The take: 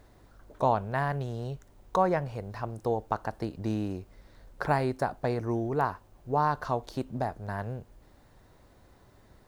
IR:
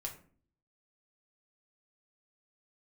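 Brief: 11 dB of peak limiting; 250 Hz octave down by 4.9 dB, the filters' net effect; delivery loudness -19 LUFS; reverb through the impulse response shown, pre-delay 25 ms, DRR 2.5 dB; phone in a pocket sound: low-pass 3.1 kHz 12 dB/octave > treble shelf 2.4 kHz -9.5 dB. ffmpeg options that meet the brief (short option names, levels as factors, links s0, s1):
-filter_complex "[0:a]equalizer=f=250:t=o:g=-7,alimiter=limit=0.0708:level=0:latency=1,asplit=2[s0][s1];[1:a]atrim=start_sample=2205,adelay=25[s2];[s1][s2]afir=irnorm=-1:irlink=0,volume=0.841[s3];[s0][s3]amix=inputs=2:normalize=0,lowpass=3100,highshelf=f=2400:g=-9.5,volume=5.96"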